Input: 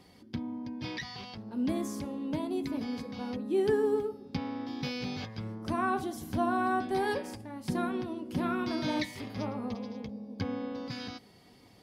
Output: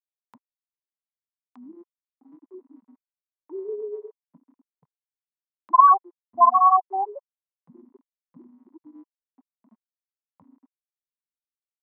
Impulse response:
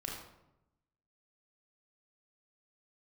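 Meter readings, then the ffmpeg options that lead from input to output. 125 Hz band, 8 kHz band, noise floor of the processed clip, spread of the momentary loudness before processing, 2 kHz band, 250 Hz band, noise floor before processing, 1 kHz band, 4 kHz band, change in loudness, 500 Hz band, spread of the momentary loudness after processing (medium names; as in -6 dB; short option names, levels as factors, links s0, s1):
under -25 dB, under -30 dB, under -85 dBFS, 10 LU, under -10 dB, under -15 dB, -58 dBFS, +15.0 dB, under -40 dB, +15.0 dB, -4.0 dB, 20 LU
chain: -filter_complex "[0:a]afftfilt=real='re*gte(hypot(re,im),0.224)':imag='im*gte(hypot(re,im),0.224)':win_size=1024:overlap=0.75,equalizer=f=2000:w=6.4:g=6.5,asplit=2[s0][s1];[s1]acompressor=mode=upward:threshold=0.0178:ratio=2.5,volume=0.944[s2];[s0][s2]amix=inputs=2:normalize=0,highpass=f=1000:t=q:w=7.8,volume=1.5"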